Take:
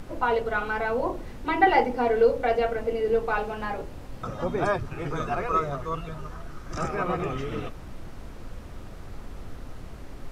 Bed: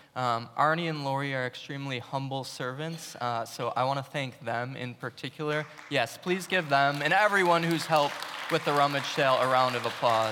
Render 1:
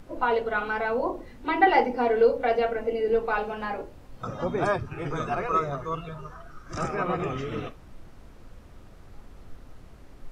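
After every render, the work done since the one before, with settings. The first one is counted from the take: noise print and reduce 8 dB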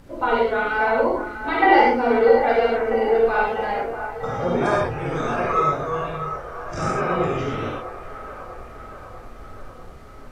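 on a send: feedback echo behind a band-pass 645 ms, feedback 63%, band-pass 1 kHz, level -9.5 dB; on the sum: gated-style reverb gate 150 ms flat, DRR -4.5 dB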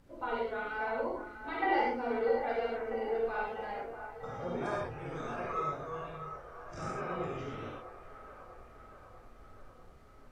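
trim -15 dB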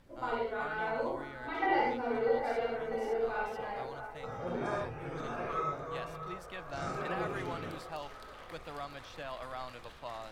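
add bed -18.5 dB

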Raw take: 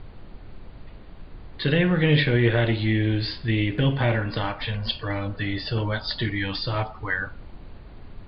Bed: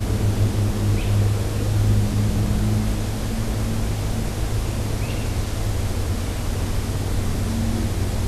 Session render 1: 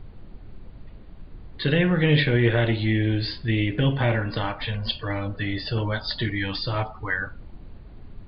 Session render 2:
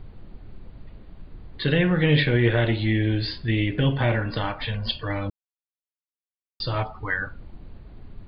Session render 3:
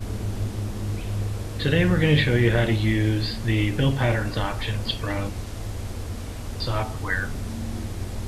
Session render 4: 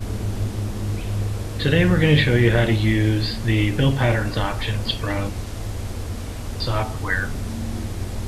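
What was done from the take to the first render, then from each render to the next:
noise reduction 6 dB, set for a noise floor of -44 dBFS
5.30–6.60 s: mute
add bed -8.5 dB
trim +3 dB

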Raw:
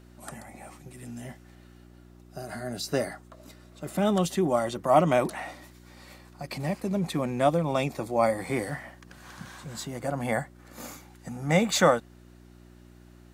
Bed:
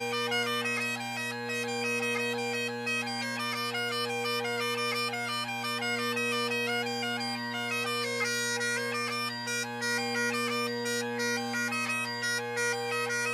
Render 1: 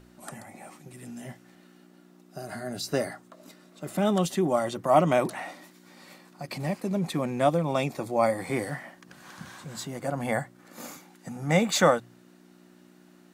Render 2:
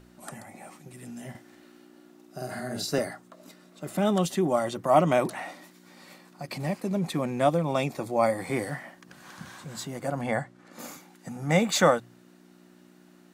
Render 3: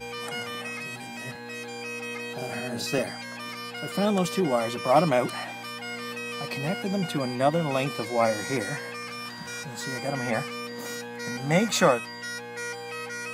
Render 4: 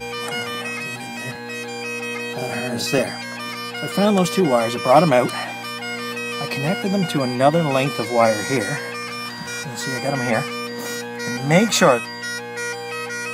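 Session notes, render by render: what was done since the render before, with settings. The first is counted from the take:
de-hum 60 Hz, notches 2
1.30–2.99 s: doubling 47 ms -2.5 dB; 10.21–10.79 s: distance through air 50 m
add bed -4.5 dB
trim +7.5 dB; peak limiter -1 dBFS, peak gain reduction 2.5 dB

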